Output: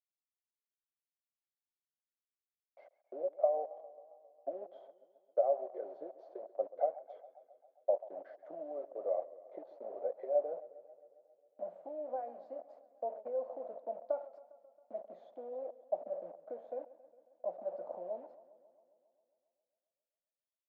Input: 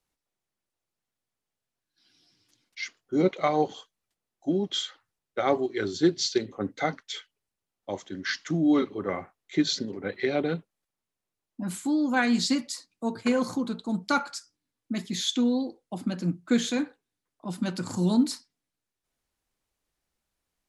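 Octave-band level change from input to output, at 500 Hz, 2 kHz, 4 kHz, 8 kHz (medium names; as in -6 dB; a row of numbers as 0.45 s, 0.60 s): -5.0 dB, under -35 dB, under -40 dB, under -40 dB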